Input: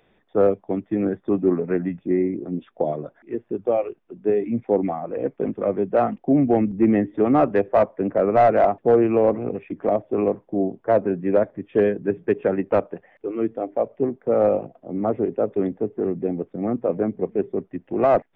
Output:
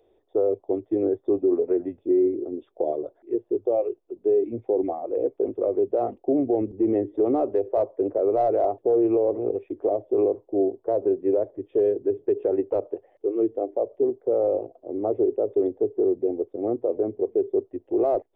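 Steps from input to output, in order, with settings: EQ curve 110 Hz 0 dB, 170 Hz -20 dB, 370 Hz +10 dB, 730 Hz +2 dB, 1600 Hz -14 dB, 2400 Hz -12 dB, 4100 Hz -2 dB; limiter -9.5 dBFS, peak gain reduction 8 dB; gain -4.5 dB

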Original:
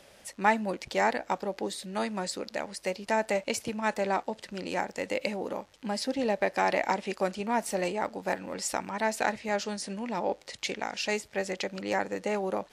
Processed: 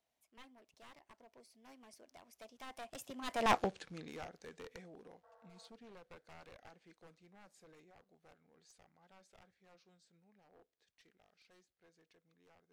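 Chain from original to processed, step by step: one-sided fold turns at -25.5 dBFS; Doppler pass-by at 3.55, 54 m/s, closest 3.5 m; spectral repair 5.26–5.66, 460–2000 Hz after; gain +4 dB

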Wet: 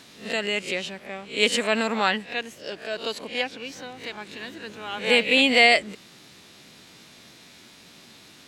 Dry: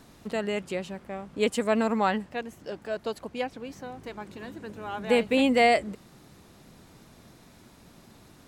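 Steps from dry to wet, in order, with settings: spectral swells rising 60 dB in 0.33 s; weighting filter D

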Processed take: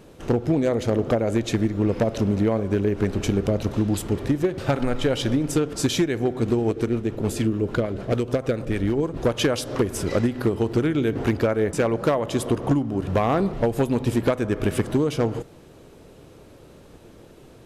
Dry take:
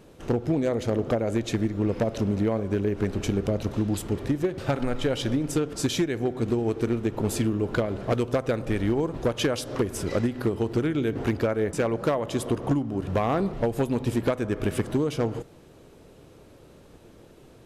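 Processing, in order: 6.71–9.17 rotary speaker horn 6.7 Hz; gain +3.5 dB

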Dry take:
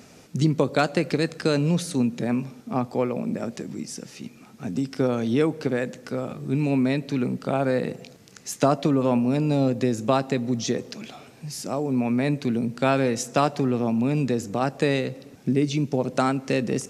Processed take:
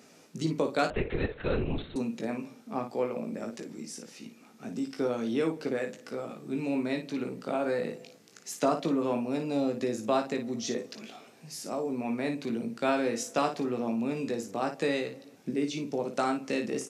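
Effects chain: HPF 220 Hz 12 dB/oct; early reflections 18 ms -6 dB, 56 ms -8.5 dB; 0.9–1.96 LPC vocoder at 8 kHz whisper; gain -7 dB

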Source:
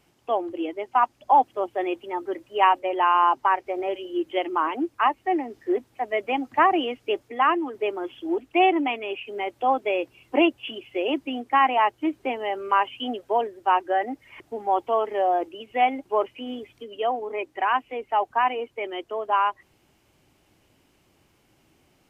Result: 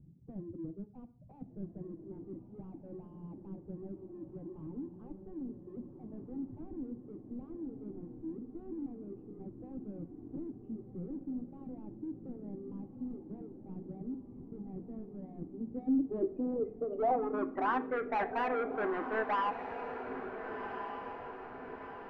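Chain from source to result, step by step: LPF 2300 Hz; tilt shelf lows +9 dB, about 1100 Hz; overloaded stage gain 18 dB; reverb removal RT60 0.99 s; soft clip -32 dBFS, distortion -7 dB; low-pass sweep 170 Hz -> 1700 Hz, 15.39–17.88; diffused feedback echo 1.444 s, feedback 54%, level -8 dB; on a send at -8.5 dB: reverb RT60 0.50 s, pre-delay 3 ms; on the sum: gain -1 dB

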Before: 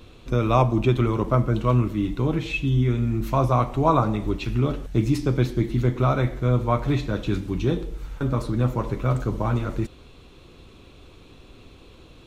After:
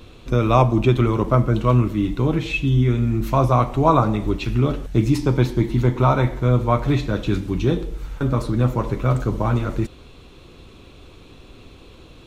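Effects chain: 5.15–6.45 bell 920 Hz +10 dB 0.26 oct; gain +3.5 dB

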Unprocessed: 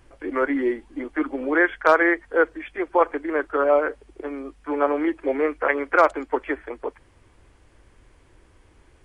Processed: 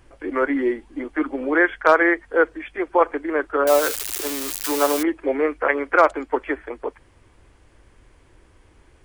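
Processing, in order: 3.67–5.03 switching spikes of -14 dBFS; gain +1.5 dB

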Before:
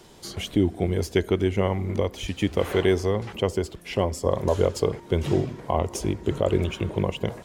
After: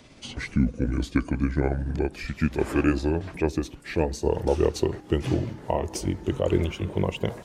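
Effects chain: gliding pitch shift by -7 st ending unshifted

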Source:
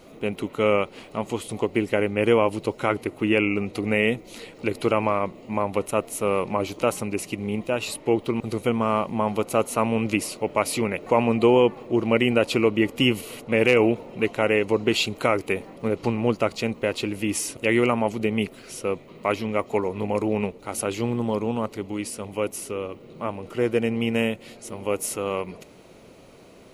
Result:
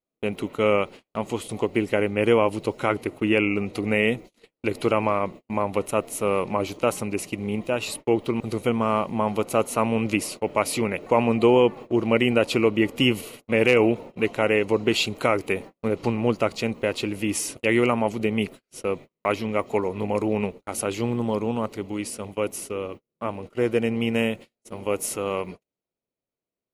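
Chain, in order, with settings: gate -36 dBFS, range -43 dB

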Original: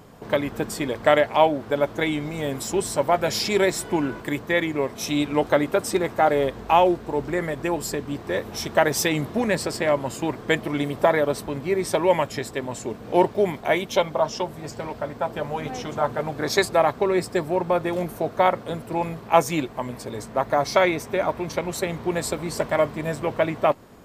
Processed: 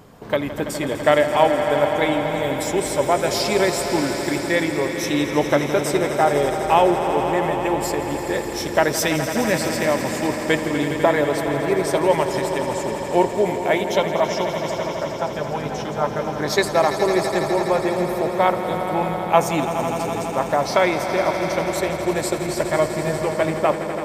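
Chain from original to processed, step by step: swelling echo 83 ms, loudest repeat 5, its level -12 dB; gain +1 dB

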